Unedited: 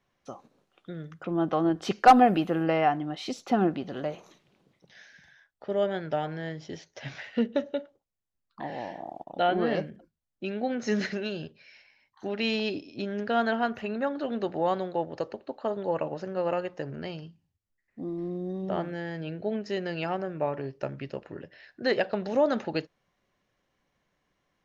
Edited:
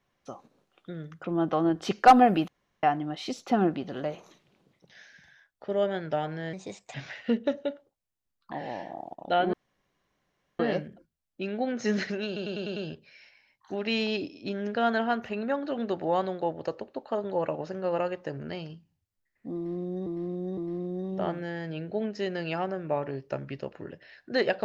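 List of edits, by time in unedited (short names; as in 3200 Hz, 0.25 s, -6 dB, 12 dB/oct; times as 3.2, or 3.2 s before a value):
2.48–2.83 room tone
6.53–7.03 speed 121%
9.62 insert room tone 1.06 s
11.29 stutter 0.10 s, 6 plays
18.08–18.59 loop, 3 plays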